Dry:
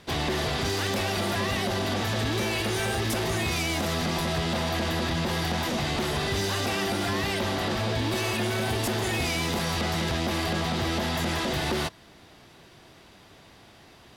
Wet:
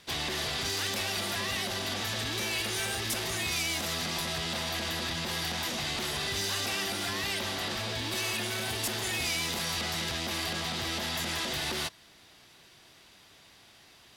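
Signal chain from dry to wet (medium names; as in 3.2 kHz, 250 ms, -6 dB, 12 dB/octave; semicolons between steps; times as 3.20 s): tilt shelf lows -6 dB, about 1.5 kHz; trim -4.5 dB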